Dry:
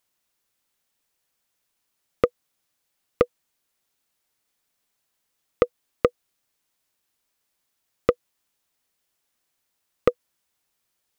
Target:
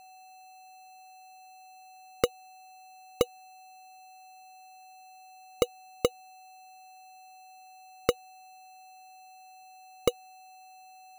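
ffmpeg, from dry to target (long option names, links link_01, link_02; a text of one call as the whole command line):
ffmpeg -i in.wav -af "aeval=exprs='val(0)+0.00631*sin(2*PI*750*n/s)':channel_layout=same,acrusher=samples=13:mix=1:aa=0.000001,volume=-5.5dB" out.wav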